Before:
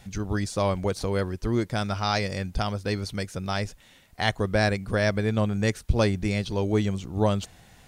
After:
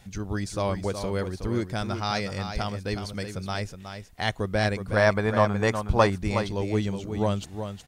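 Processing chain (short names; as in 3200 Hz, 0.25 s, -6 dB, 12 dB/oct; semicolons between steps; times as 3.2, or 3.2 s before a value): 4.96–6.1 bell 1000 Hz +14 dB 1.4 oct; on a send: echo 0.368 s -8.5 dB; on the sum: gain -2.5 dB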